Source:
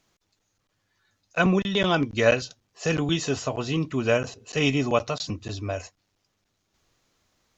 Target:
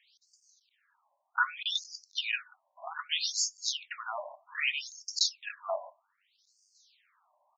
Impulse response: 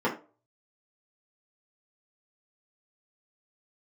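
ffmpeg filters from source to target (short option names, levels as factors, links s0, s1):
-filter_complex "[0:a]aemphasis=mode=production:type=cd,acompressor=threshold=0.0447:ratio=6,asetrate=42845,aresample=44100,atempo=1.0293,asplit=2[s0][s1];[1:a]atrim=start_sample=2205[s2];[s1][s2]afir=irnorm=-1:irlink=0,volume=0.075[s3];[s0][s3]amix=inputs=2:normalize=0,afftfilt=real='re*between(b*sr/1024,770*pow(6500/770,0.5+0.5*sin(2*PI*0.64*pts/sr))/1.41,770*pow(6500/770,0.5+0.5*sin(2*PI*0.64*pts/sr))*1.41)':imag='im*between(b*sr/1024,770*pow(6500/770,0.5+0.5*sin(2*PI*0.64*pts/sr))/1.41,770*pow(6500/770,0.5+0.5*sin(2*PI*0.64*pts/sr))*1.41)':win_size=1024:overlap=0.75,volume=2.11"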